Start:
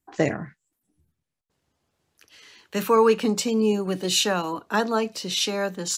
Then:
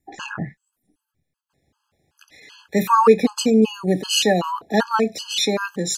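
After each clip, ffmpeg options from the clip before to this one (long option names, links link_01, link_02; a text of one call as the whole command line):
ffmpeg -i in.wav -af "bass=frequency=250:gain=1,treble=frequency=4000:gain=-3,afftfilt=real='re*gt(sin(2*PI*2.6*pts/sr)*(1-2*mod(floor(b*sr/1024/840),2)),0)':imag='im*gt(sin(2*PI*2.6*pts/sr)*(1-2*mod(floor(b*sr/1024/840),2)),0)':win_size=1024:overlap=0.75,volume=7.5dB" out.wav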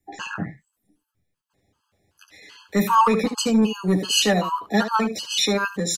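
ffmpeg -i in.wav -filter_complex "[0:a]aecho=1:1:10|75:0.631|0.266,acrossover=split=210|1000|2200[link_01][link_02][link_03][link_04];[link_02]asoftclip=type=tanh:threshold=-17.5dB[link_05];[link_01][link_05][link_03][link_04]amix=inputs=4:normalize=0,volume=-1.5dB" out.wav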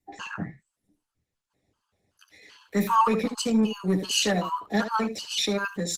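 ffmpeg -i in.wav -af "volume=-4dB" -ar 48000 -c:a libopus -b:a 16k out.opus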